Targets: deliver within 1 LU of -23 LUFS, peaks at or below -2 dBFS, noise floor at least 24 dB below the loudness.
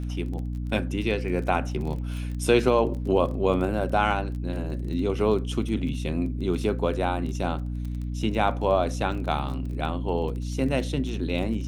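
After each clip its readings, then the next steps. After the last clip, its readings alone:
ticks 21/s; hum 60 Hz; harmonics up to 300 Hz; hum level -28 dBFS; loudness -26.5 LUFS; peak -7.5 dBFS; loudness target -23.0 LUFS
-> de-click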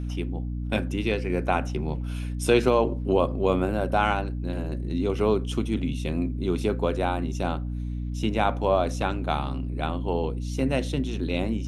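ticks 0/s; hum 60 Hz; harmonics up to 300 Hz; hum level -28 dBFS
-> notches 60/120/180/240/300 Hz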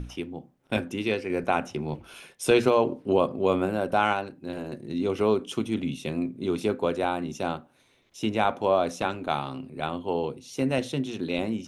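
hum none; loudness -27.5 LUFS; peak -8.0 dBFS; loudness target -23.0 LUFS
-> gain +4.5 dB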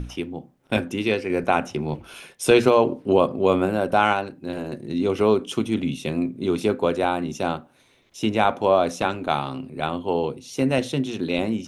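loudness -23.0 LUFS; peak -3.5 dBFS; noise floor -59 dBFS

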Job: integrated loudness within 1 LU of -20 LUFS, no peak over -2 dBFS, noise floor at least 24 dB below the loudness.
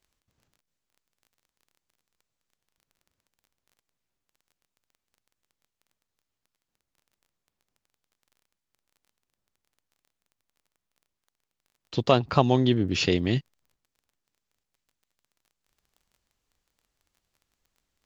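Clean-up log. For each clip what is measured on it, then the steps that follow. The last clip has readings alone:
ticks 20/s; loudness -24.0 LUFS; peak -3.5 dBFS; loudness target -20.0 LUFS
-> de-click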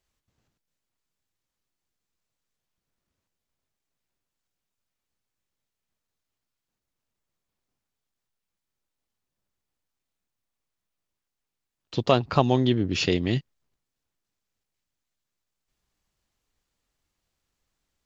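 ticks 0/s; loudness -24.0 LUFS; peak -3.5 dBFS; loudness target -20.0 LUFS
-> gain +4 dB; limiter -2 dBFS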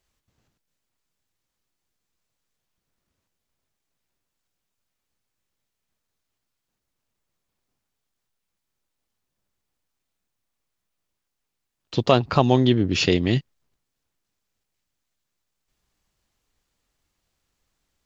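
loudness -20.5 LUFS; peak -2.0 dBFS; noise floor -81 dBFS

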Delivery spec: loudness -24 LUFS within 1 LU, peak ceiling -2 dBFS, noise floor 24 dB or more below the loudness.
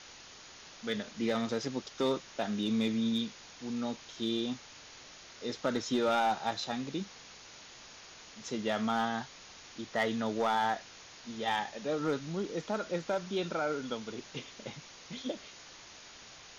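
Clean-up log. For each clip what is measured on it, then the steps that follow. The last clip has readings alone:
clipped 0.4%; flat tops at -23.0 dBFS; noise floor -52 dBFS; noise floor target -59 dBFS; loudness -34.5 LUFS; peak -23.0 dBFS; loudness target -24.0 LUFS
-> clip repair -23 dBFS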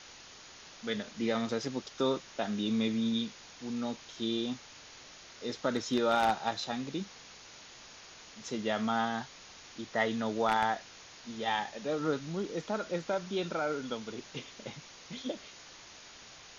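clipped 0.0%; noise floor -52 dBFS; noise floor target -58 dBFS
-> denoiser 6 dB, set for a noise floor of -52 dBFS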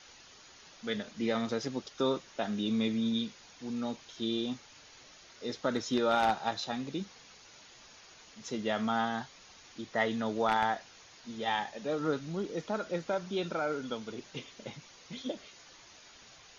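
noise floor -56 dBFS; noise floor target -58 dBFS
-> denoiser 6 dB, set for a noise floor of -56 dBFS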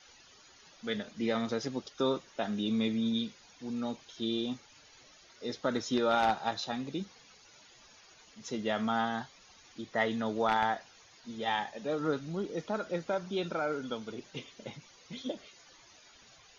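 noise floor -59 dBFS; loudness -34.0 LUFS; peak -14.0 dBFS; loudness target -24.0 LUFS
-> gain +10 dB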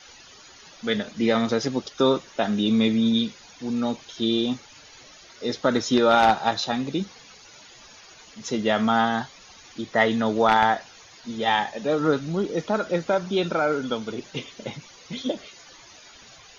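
loudness -24.0 LUFS; peak -4.0 dBFS; noise floor -49 dBFS

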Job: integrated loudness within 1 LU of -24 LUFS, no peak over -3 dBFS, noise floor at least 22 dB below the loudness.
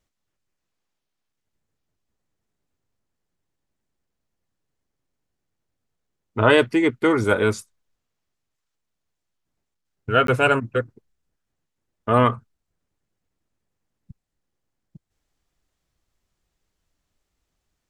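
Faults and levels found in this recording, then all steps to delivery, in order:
dropouts 1; longest dropout 13 ms; loudness -20.0 LUFS; peak -2.0 dBFS; loudness target -24.0 LUFS
-> interpolate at 10.27, 13 ms; gain -4 dB

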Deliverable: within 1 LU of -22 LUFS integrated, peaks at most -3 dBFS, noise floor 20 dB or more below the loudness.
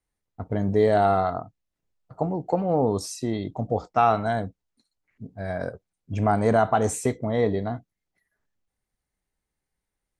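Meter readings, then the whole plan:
loudness -24.5 LUFS; peak -7.5 dBFS; loudness target -22.0 LUFS
-> gain +2.5 dB

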